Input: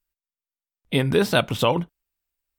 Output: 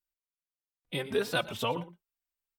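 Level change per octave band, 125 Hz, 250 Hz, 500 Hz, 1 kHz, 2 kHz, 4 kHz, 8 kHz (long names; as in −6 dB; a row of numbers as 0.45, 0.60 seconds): −15.5, −14.0, −10.0, −9.5, −8.0, −8.5, −9.0 decibels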